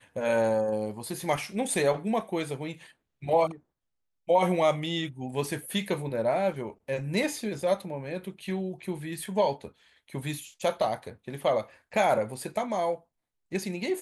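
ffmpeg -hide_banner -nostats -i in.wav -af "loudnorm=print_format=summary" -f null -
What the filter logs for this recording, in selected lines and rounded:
Input Integrated:    -29.4 LUFS
Input True Peak:     -12.3 dBTP
Input LRA:             2.8 LU
Input Threshold:     -39.8 LUFS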